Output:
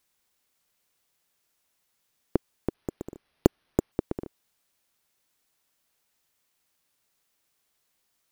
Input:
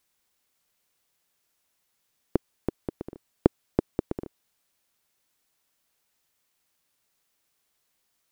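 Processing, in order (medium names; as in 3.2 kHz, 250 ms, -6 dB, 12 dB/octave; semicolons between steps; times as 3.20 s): 2.74–3.92 s: careless resampling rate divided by 6×, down none, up hold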